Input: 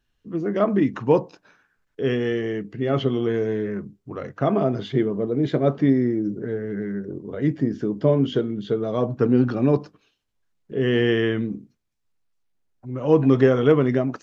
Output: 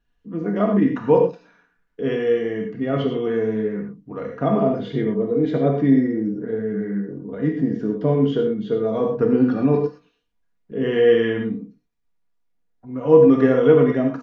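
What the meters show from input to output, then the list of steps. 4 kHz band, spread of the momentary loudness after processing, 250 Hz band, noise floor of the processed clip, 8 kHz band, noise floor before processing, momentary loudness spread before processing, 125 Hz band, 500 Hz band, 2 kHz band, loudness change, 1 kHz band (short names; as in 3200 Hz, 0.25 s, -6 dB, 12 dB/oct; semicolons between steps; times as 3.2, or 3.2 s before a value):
-2.5 dB, 13 LU, +2.0 dB, -69 dBFS, n/a, -73 dBFS, 12 LU, -1.0 dB, +3.5 dB, 0.0 dB, +2.5 dB, +2.0 dB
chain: high shelf 3500 Hz -11 dB; comb 4.2 ms, depth 50%; non-linear reverb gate 0.14 s flat, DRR 2 dB; gain -1 dB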